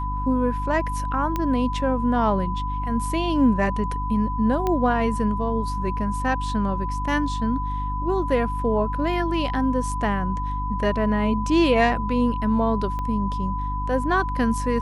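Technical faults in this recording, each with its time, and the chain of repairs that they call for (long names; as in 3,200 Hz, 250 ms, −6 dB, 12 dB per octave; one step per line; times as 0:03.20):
mains hum 50 Hz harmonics 6 −28 dBFS
whistle 1,000 Hz −28 dBFS
0:01.36: click −12 dBFS
0:04.67: click −12 dBFS
0:12.99: click −19 dBFS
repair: click removal
hum removal 50 Hz, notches 6
notch filter 1,000 Hz, Q 30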